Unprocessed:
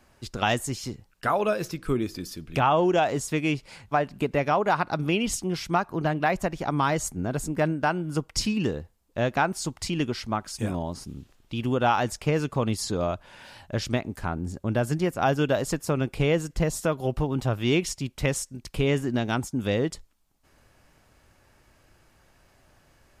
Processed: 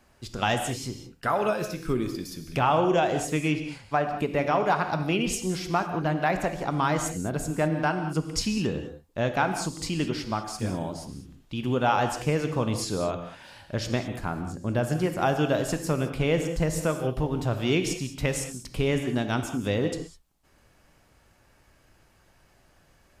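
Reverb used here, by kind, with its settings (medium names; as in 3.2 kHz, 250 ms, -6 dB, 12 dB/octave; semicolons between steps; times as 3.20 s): gated-style reverb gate 230 ms flat, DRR 6.5 dB; trim -1.5 dB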